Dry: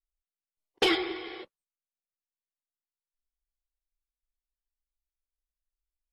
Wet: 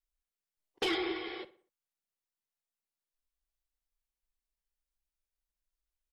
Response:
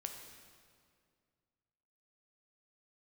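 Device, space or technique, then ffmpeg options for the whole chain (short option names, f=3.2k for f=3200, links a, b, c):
soft clipper into limiter: -filter_complex "[0:a]asoftclip=type=tanh:threshold=-16.5dB,alimiter=level_in=0.5dB:limit=-24dB:level=0:latency=1:release=67,volume=-0.5dB,asettb=1/sr,asplit=3[a][b][c];[a]atrim=end=0.944[d];[b]atrim=start=0.94:end=1.37,asetpts=PTS-STARTPTS,afade=t=in:d=0.004:c=qsin,afade=t=out:st=0.426:d=0.004:c=qsin,lowpass=6.7k[e];[c]atrim=start=1.366[f];[d][e]acrossfade=d=0.004:c1=hsin:c2=qsin[g];[g][f]acrossfade=d=0.004:c1=qsin:c2=hsin,asplit=2[h][i];[i]adelay=61,lowpass=f=3.1k:p=1,volume=-16dB,asplit=2[j][k];[k]adelay=61,lowpass=f=3.1k:p=1,volume=0.44,asplit=2[l][m];[m]adelay=61,lowpass=f=3.1k:p=1,volume=0.44,asplit=2[n][o];[o]adelay=61,lowpass=f=3.1k:p=1,volume=0.44[p];[h][j][l][n][p]amix=inputs=5:normalize=0"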